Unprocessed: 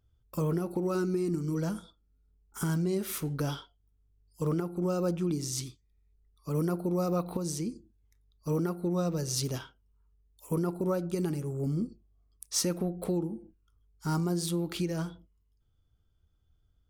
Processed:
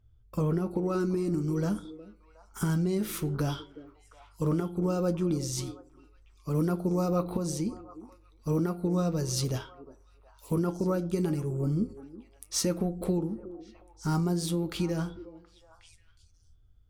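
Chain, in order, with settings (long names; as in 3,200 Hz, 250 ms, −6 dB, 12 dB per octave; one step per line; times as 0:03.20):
high-shelf EQ 6,600 Hz −11 dB, from 0:01.00 −3.5 dB
flanger 0.95 Hz, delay 9 ms, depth 1.4 ms, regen +64%
low-shelf EQ 91 Hz +10.5 dB
echo through a band-pass that steps 363 ms, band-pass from 360 Hz, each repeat 1.4 octaves, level −11.5 dB
level +5.5 dB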